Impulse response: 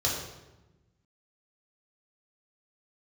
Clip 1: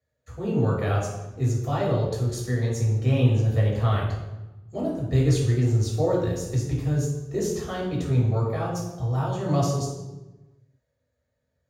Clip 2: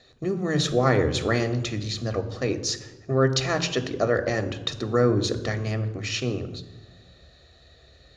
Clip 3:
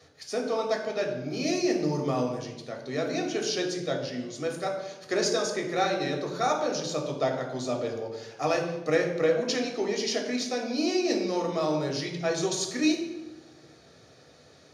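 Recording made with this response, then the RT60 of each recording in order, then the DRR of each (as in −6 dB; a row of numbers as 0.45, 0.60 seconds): 1; 1.1, 1.1, 1.1 seconds; −5.0, 8.5, 0.5 decibels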